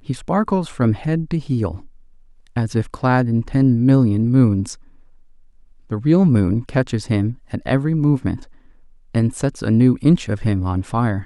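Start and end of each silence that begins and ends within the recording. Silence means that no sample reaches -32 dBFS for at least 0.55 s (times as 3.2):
1.85–2.56
4.74–5.91
8.43–9.15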